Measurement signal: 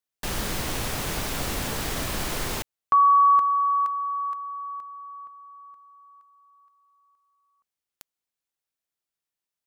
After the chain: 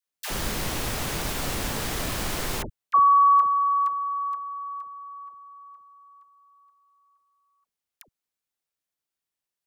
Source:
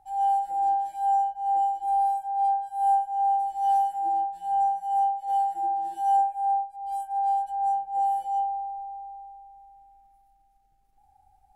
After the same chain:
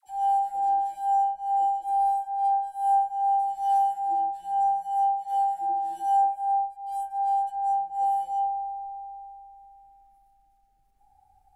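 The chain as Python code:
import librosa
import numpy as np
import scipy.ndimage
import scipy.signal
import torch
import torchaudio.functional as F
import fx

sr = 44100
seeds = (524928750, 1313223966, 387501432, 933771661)

y = fx.dispersion(x, sr, late='lows', ms=74.0, hz=660.0)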